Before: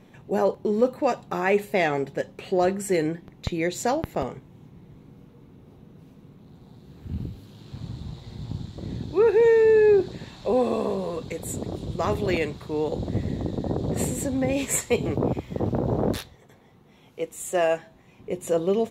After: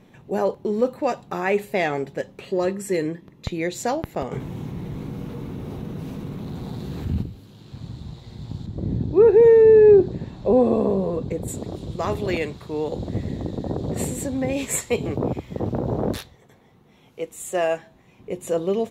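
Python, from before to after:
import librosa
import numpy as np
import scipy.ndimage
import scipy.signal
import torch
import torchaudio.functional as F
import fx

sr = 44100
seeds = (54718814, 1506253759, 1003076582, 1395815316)

y = fx.notch_comb(x, sr, f0_hz=750.0, at=(2.45, 3.46))
y = fx.env_flatten(y, sr, amount_pct=50, at=(4.31, 7.21), fade=0.02)
y = fx.tilt_shelf(y, sr, db=8.5, hz=970.0, at=(8.66, 11.48))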